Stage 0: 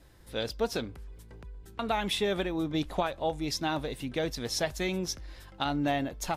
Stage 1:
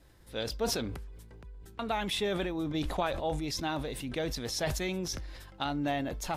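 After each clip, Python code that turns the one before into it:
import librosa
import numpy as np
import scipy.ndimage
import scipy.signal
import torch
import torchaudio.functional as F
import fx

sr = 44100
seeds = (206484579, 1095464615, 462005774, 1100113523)

y = fx.sustainer(x, sr, db_per_s=41.0)
y = F.gain(torch.from_numpy(y), -3.0).numpy()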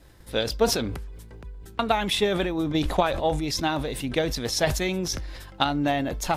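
y = fx.transient(x, sr, attack_db=6, sustain_db=1)
y = F.gain(torch.from_numpy(y), 6.5).numpy()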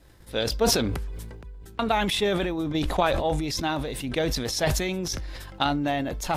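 y = fx.sustainer(x, sr, db_per_s=31.0)
y = F.gain(torch.from_numpy(y), -2.5).numpy()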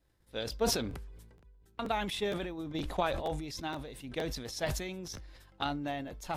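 y = fx.buffer_crackle(x, sr, first_s=0.9, period_s=0.47, block=512, kind='repeat')
y = fx.upward_expand(y, sr, threshold_db=-42.0, expansion=1.5)
y = F.gain(torch.from_numpy(y), -7.0).numpy()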